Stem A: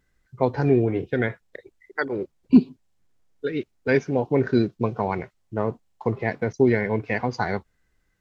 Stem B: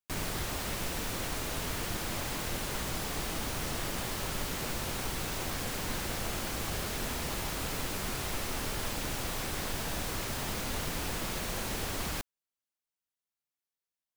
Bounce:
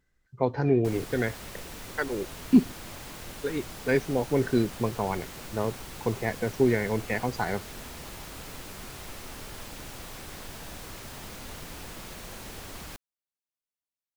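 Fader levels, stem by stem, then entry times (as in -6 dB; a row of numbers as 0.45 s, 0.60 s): -4.0 dB, -6.5 dB; 0.00 s, 0.75 s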